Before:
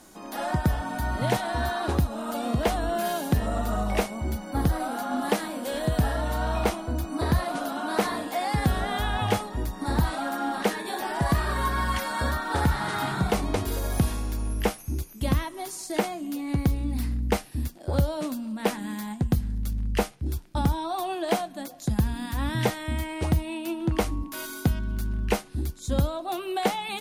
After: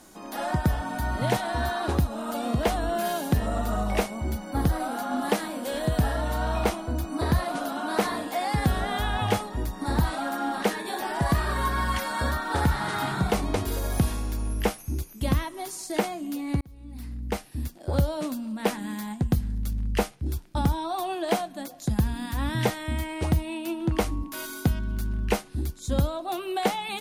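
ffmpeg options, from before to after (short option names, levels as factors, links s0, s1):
-filter_complex "[0:a]asplit=2[s0][s1];[s0]atrim=end=16.61,asetpts=PTS-STARTPTS,afade=t=out:st=16.606:d=0.004:c=hsin[s2];[s1]atrim=start=16.61,asetpts=PTS-STARTPTS,afade=t=in:d=1.28[s3];[s2][s3]concat=n=2:v=0:a=1"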